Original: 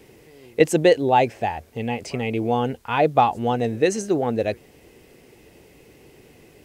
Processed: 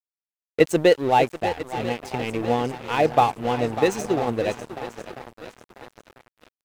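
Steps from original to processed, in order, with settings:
feedback echo with a long and a short gap by turns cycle 994 ms, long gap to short 1.5 to 1, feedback 52%, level −11 dB
dead-zone distortion −31 dBFS

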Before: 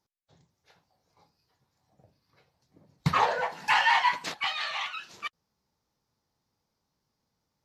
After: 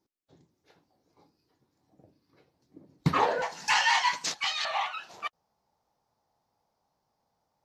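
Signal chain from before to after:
parametric band 310 Hz +14.5 dB 1.1 octaves, from 0:03.42 6,200 Hz, from 0:04.65 740 Hz
level −3 dB

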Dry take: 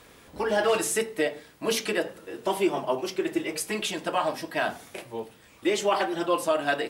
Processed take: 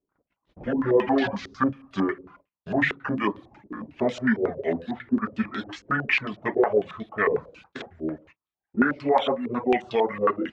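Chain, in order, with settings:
gliding playback speed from 59% → 72%
noise gate −48 dBFS, range −33 dB
reverb reduction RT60 0.6 s
low-pass on a step sequencer 11 Hz 400–3,600 Hz

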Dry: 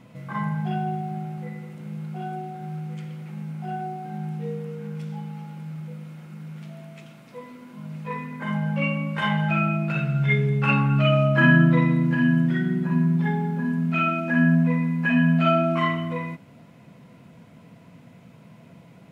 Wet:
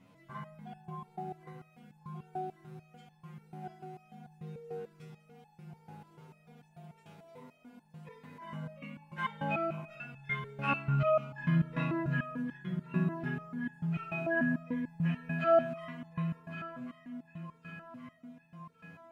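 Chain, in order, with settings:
0:05.67–0:07.85: hum with harmonics 100 Hz, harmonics 10, −49 dBFS −1 dB per octave
delay that swaps between a low-pass and a high-pass 555 ms, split 1,000 Hz, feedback 72%, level −8 dB
convolution reverb RT60 0.35 s, pre-delay 4 ms, DRR 14 dB
step-sequenced resonator 6.8 Hz 93–860 Hz

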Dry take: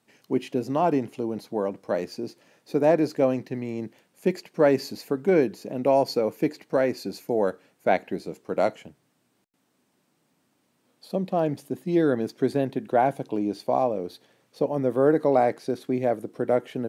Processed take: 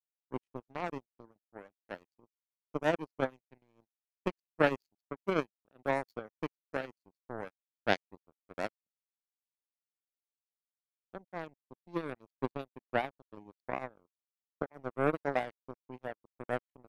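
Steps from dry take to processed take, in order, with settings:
reverb reduction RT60 0.57 s
power curve on the samples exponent 3

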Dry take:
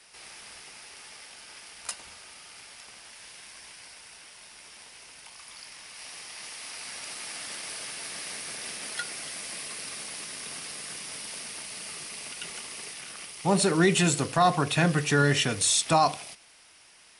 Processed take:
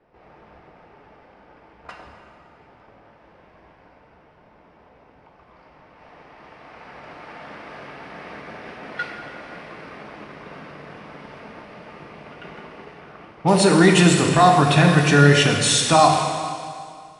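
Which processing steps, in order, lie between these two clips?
low-pass that shuts in the quiet parts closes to 570 Hz, open at −22 dBFS
high-shelf EQ 7,600 Hz −11.5 dB
in parallel at −3 dB: brickwall limiter −17 dBFS, peak gain reduction 7.5 dB
on the sum: dense smooth reverb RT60 2.2 s, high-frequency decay 0.95×, DRR 2 dB
level +3.5 dB

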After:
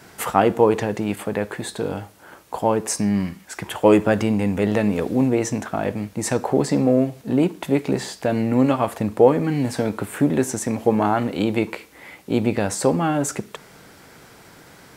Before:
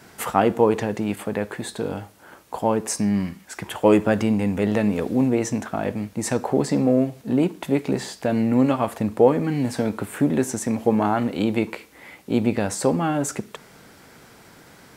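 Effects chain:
parametric band 230 Hz −4 dB 0.23 octaves
level +2 dB

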